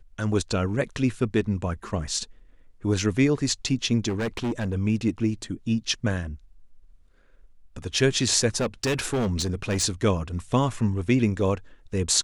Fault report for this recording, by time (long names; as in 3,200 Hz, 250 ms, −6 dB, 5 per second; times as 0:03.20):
0:04.08–0:04.74: clipping −23.5 dBFS
0:08.60–0:09.84: clipping −21 dBFS